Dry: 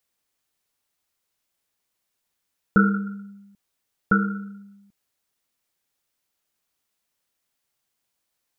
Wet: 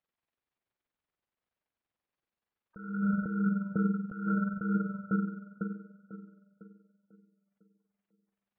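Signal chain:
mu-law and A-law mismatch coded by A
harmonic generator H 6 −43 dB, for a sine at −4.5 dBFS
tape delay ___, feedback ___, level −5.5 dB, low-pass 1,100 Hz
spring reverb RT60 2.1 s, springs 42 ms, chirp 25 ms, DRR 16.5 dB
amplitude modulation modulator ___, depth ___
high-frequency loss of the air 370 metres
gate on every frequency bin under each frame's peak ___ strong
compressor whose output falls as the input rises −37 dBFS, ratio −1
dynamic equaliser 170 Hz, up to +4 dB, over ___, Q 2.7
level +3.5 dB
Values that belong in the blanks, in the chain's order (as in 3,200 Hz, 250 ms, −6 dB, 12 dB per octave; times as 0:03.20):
499 ms, 51%, 21 Hz, 40%, −30 dB, −47 dBFS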